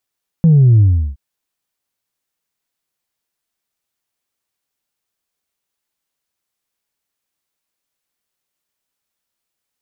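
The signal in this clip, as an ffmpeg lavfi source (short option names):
-f lavfi -i "aevalsrc='0.501*clip((0.72-t)/0.36,0,1)*tanh(1.06*sin(2*PI*170*0.72/log(65/170)*(exp(log(65/170)*t/0.72)-1)))/tanh(1.06)':d=0.72:s=44100"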